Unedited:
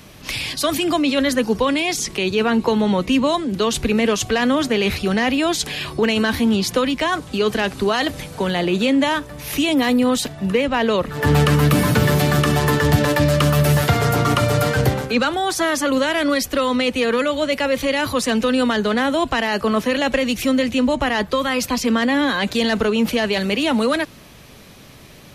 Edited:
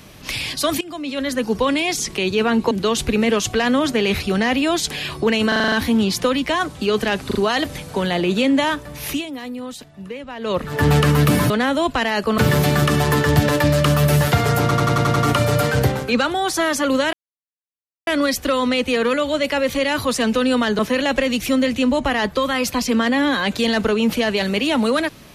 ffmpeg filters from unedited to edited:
ffmpeg -i in.wav -filter_complex "[0:a]asplit=23[link_01][link_02][link_03][link_04][link_05][link_06][link_07][link_08][link_09][link_10][link_11][link_12][link_13][link_14][link_15][link_16][link_17][link_18][link_19][link_20][link_21][link_22][link_23];[link_01]atrim=end=0.81,asetpts=PTS-STARTPTS,afade=type=out:start_time=0.806:duration=0.004:curve=hsin:silence=0.105925[link_24];[link_02]atrim=start=0.81:end=2.712,asetpts=PTS-STARTPTS,afade=type=in:duration=0.85:silence=0.105925[link_25];[link_03]atrim=start=3.468:end=6.282[link_26];[link_04]atrim=start=6.238:end=6.282[link_27];[link_05]atrim=start=6.238:end=6.282[link_28];[link_06]atrim=start=6.238:end=6.282[link_29];[link_07]atrim=start=6.238:end=6.282[link_30];[link_08]atrim=start=6.238:end=6.282[link_31];[link_09]atrim=start=6.238:end=7.832[link_32];[link_10]atrim=start=7.788:end=7.832[link_33];[link_11]atrim=start=7.788:end=9.7,asetpts=PTS-STARTPTS,afade=type=out:start_time=1.732:duration=0.18:silence=0.211349[link_34];[link_12]atrim=start=9.7:end=10.84,asetpts=PTS-STARTPTS,volume=-13.5dB[link_35];[link_13]atrim=start=10.84:end=11.942,asetpts=PTS-STARTPTS,afade=type=in:duration=0.18:silence=0.211349[link_36];[link_14]atrim=start=18.868:end=19.752[link_37];[link_15]atrim=start=11.938:end=14.272[link_38];[link_16]atrim=start=14.178:end=14.272[link_39];[link_17]atrim=start=14.178:end=14.272[link_40];[link_18]atrim=start=14.178:end=14.272[link_41];[link_19]atrim=start=14.178:end=14.272[link_42];[link_20]atrim=start=14.178:end=14.272[link_43];[link_21]atrim=start=14.178:end=16.15,asetpts=PTS-STARTPTS,afade=type=out:start_time=1.968:duration=0.004:curve=hsin,apad=pad_dur=0.94[link_44];[link_22]atrim=start=16.15:end=18.872,asetpts=PTS-STARTPTS,afade=type=in:duration=0.004:curve=hsin[link_45];[link_23]atrim=start=19.748[link_46];[link_24][link_25]concat=n=2:v=0:a=1[link_47];[link_47][link_26]acrossfade=duration=0.004:curve1=hsin:curve2=hsin[link_48];[link_48][link_27]acrossfade=duration=0.004:curve1=hsin:curve2=hsin[link_49];[link_49][link_28]acrossfade=duration=0.004:curve1=hsin:curve2=hsin[link_50];[link_50][link_29]acrossfade=duration=0.004:curve1=hsin:curve2=hsin[link_51];[link_51][link_30]acrossfade=duration=0.004:curve1=hsin:curve2=hsin[link_52];[link_52][link_31]acrossfade=duration=0.004:curve1=hsin:curve2=hsin[link_53];[link_53][link_32]acrossfade=duration=0.004:curve1=hsin:curve2=hsin[link_54];[link_54][link_33]acrossfade=duration=0.004:curve1=hsin:curve2=hsin[link_55];[link_34][link_35][link_36]concat=n=3:v=0:a=1[link_56];[link_55][link_56]acrossfade=duration=0.004:curve1=hsin:curve2=hsin[link_57];[link_57][link_37]acrossfade=duration=0.004:curve1=hsin:curve2=hsin[link_58];[link_58][link_38]acrossfade=duration=0.004:curve1=hsin:curve2=hsin[link_59];[link_59][link_39]acrossfade=duration=0.004:curve1=hsin:curve2=hsin[link_60];[link_60][link_40]acrossfade=duration=0.004:curve1=hsin:curve2=hsin[link_61];[link_61][link_41]acrossfade=duration=0.004:curve1=hsin:curve2=hsin[link_62];[link_62][link_42]acrossfade=duration=0.004:curve1=hsin:curve2=hsin[link_63];[link_63][link_43]acrossfade=duration=0.004:curve1=hsin:curve2=hsin[link_64];[link_44][link_45]concat=n=2:v=0:a=1[link_65];[link_64][link_65]acrossfade=duration=0.004:curve1=hsin:curve2=hsin[link_66];[link_66][link_46]acrossfade=duration=0.004:curve1=hsin:curve2=hsin" out.wav

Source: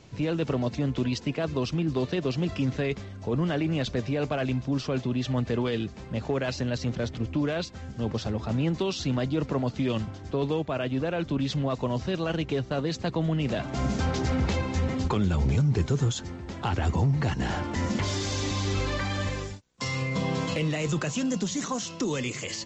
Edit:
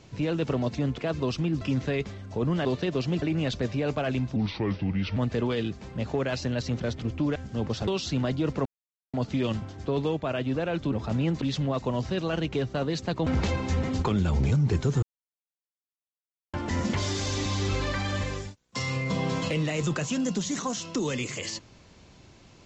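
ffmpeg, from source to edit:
ffmpeg -i in.wav -filter_complex "[0:a]asplit=15[link_01][link_02][link_03][link_04][link_05][link_06][link_07][link_08][link_09][link_10][link_11][link_12][link_13][link_14][link_15];[link_01]atrim=end=0.982[link_16];[link_02]atrim=start=1.318:end=1.952[link_17];[link_03]atrim=start=2.518:end=3.562[link_18];[link_04]atrim=start=1.948:end=2.522[link_19];[link_05]atrim=start=3.558:end=4.704[link_20];[link_06]atrim=start=4.7:end=5.32,asetpts=PTS-STARTPTS,asetrate=33957,aresample=44100,atrim=end_sample=35509,asetpts=PTS-STARTPTS[link_21];[link_07]atrim=start=5.316:end=7.512[link_22];[link_08]atrim=start=7.798:end=8.322[link_23];[link_09]atrim=start=8.808:end=9.59,asetpts=PTS-STARTPTS,afade=type=out:start_time=0.778:duration=0.004:curve=hsin,apad=pad_dur=0.48[link_24];[link_10]atrim=start=9.59:end=11.382,asetpts=PTS-STARTPTS,afade=type=in:duration=0.004:curve=hsin[link_25];[link_11]atrim=start=8.318:end=8.812[link_26];[link_12]atrim=start=11.378:end=13.232[link_27];[link_13]atrim=start=14.318:end=16.08,asetpts=PTS-STARTPTS,afade=type=out:start_time=1.758:duration=0.004:curve=hsin[link_28];[link_14]atrim=start=16.08:end=17.59,asetpts=PTS-STARTPTS,volume=0[link_29];[link_15]atrim=start=17.59,asetpts=PTS-STARTPTS,afade=type=in:duration=0.004:curve=hsin[link_30];[link_16][link_17]acrossfade=duration=0.004:curve1=hsin:curve2=hsin[link_31];[link_31][link_18]acrossfade=duration=0.004:curve1=hsin:curve2=hsin[link_32];[link_32][link_19]acrossfade=duration=0.004:curve1=hsin:curve2=hsin[link_33];[link_33][link_20]acrossfade=duration=0.004:curve1=hsin:curve2=hsin[link_34];[link_34][link_21]acrossfade=duration=0.004:curve1=hsin:curve2=hsin[link_35];[link_35][link_22]acrossfade=duration=0.004:curve1=hsin:curve2=hsin[link_36];[link_36][link_23]acrossfade=duration=0.004:curve1=hsin:curve2=hsin[link_37];[link_24][link_25]concat=n=2:v=0:a=1[link_38];[link_37][link_38]acrossfade=duration=0.004:curve1=hsin:curve2=hsin[link_39];[link_39][link_26]acrossfade=duration=0.004:curve1=hsin:curve2=hsin[link_40];[link_40][link_27]acrossfade=duration=0.004:curve1=hsin:curve2=hsin[link_41];[link_28][link_29][link_30]concat=n=3:v=0:a=1[link_42];[link_41][link_42]acrossfade=duration=0.004:curve1=hsin:curve2=hsin" out.wav

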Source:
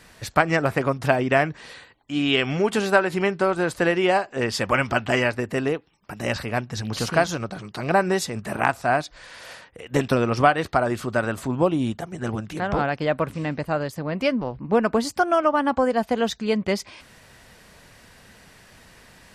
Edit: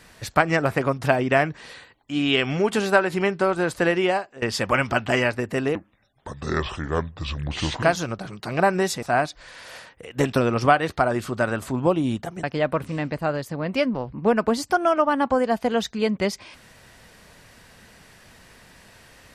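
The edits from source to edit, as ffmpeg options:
ffmpeg -i in.wav -filter_complex "[0:a]asplit=6[link_01][link_02][link_03][link_04][link_05][link_06];[link_01]atrim=end=4.42,asetpts=PTS-STARTPTS,afade=type=out:start_time=4:duration=0.42:silence=0.11885[link_07];[link_02]atrim=start=4.42:end=5.754,asetpts=PTS-STARTPTS,afade=type=in:duration=0.004:curve=hsin:silence=0.11885[link_08];[link_03]atrim=start=5.75:end=7.14,asetpts=PTS-STARTPTS,asetrate=29547,aresample=44100,atrim=end_sample=91491,asetpts=PTS-STARTPTS[link_09];[link_04]atrim=start=7.136:end=8.342[link_10];[link_05]atrim=start=8.778:end=12.192[link_11];[link_06]atrim=start=12.898[link_12];[link_07][link_08]concat=n=2:v=0:a=1[link_13];[link_13][link_09]acrossfade=duration=0.004:curve1=hsin:curve2=hsin[link_14];[link_14][link_10]acrossfade=duration=0.004:curve1=hsin:curve2=hsin[link_15];[link_15][link_11]acrossfade=duration=0.004:curve1=hsin:curve2=hsin[link_16];[link_16][link_12]acrossfade=duration=0.004:curve1=hsin:curve2=hsin" out.wav

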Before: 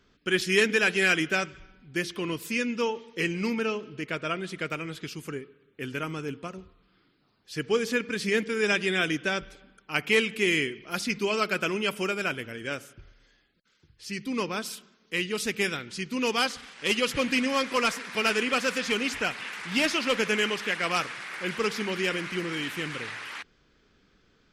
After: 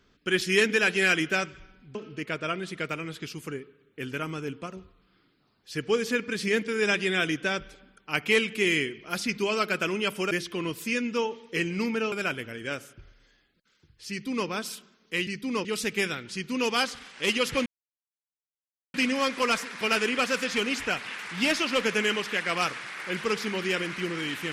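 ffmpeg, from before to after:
ffmpeg -i in.wav -filter_complex "[0:a]asplit=7[link_01][link_02][link_03][link_04][link_05][link_06][link_07];[link_01]atrim=end=1.952[link_08];[link_02]atrim=start=3.758:end=12.122[link_09];[link_03]atrim=start=1.948:end=3.762[link_10];[link_04]atrim=start=12.118:end=15.272[link_11];[link_05]atrim=start=14.098:end=14.482[link_12];[link_06]atrim=start=15.268:end=17.28,asetpts=PTS-STARTPTS,afade=type=out:start_time=2.008:duration=0.004:curve=hsin,apad=pad_dur=1.28[link_13];[link_07]atrim=start=17.28,asetpts=PTS-STARTPTS,afade=type=in:duration=0.004:curve=hsin[link_14];[link_08][link_09]acrossfade=duration=0.004:curve1=hsin:curve2=hsin[link_15];[link_15][link_10]acrossfade=duration=0.004:curve1=hsin:curve2=hsin[link_16];[link_16][link_11]acrossfade=duration=0.004:curve1=hsin:curve2=hsin[link_17];[link_17][link_12]acrossfade=duration=0.004:curve1=hsin:curve2=hsin[link_18];[link_13][link_14]concat=n=2:v=0:a=1[link_19];[link_18][link_19]acrossfade=duration=0.004:curve1=hsin:curve2=hsin" out.wav

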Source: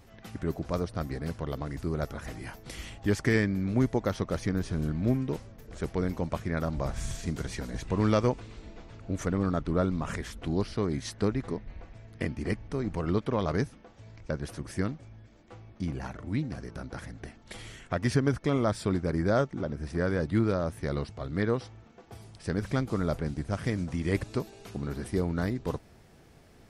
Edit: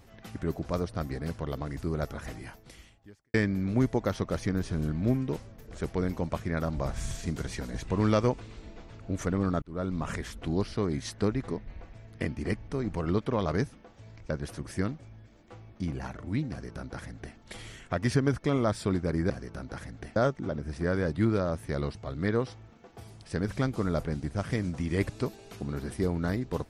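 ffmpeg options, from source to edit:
ffmpeg -i in.wav -filter_complex "[0:a]asplit=5[link_01][link_02][link_03][link_04][link_05];[link_01]atrim=end=3.34,asetpts=PTS-STARTPTS,afade=type=out:start_time=2.3:duration=1.04:curve=qua[link_06];[link_02]atrim=start=3.34:end=9.62,asetpts=PTS-STARTPTS,afade=type=in:duration=0.004:curve=hsin,afade=type=out:start_time=6.276:duration=0.004:curve=hsin[link_07];[link_03]atrim=start=9.62:end=19.302,asetpts=PTS-STARTPTS,afade=type=in:duration=0.39[link_08];[link_04]atrim=start=16.508:end=17.372[link_09];[link_05]atrim=start=19.298[link_10];[link_06][link_07][link_08]concat=n=3:v=0:a=1[link_11];[link_11][link_09]acrossfade=duration=0.004:curve1=hsin:curve2=hsin[link_12];[link_12][link_10]acrossfade=duration=0.004:curve1=hsin:curve2=hsin" out.wav

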